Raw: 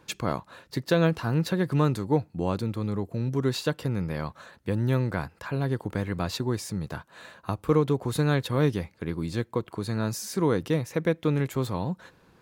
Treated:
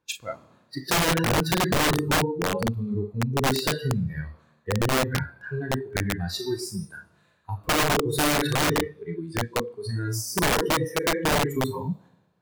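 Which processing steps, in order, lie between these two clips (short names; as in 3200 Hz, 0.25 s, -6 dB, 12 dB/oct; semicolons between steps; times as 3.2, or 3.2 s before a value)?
Schroeder reverb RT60 1.2 s, combs from 27 ms, DRR 2 dB; spectral noise reduction 23 dB; wrapped overs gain 19 dB; gain +2.5 dB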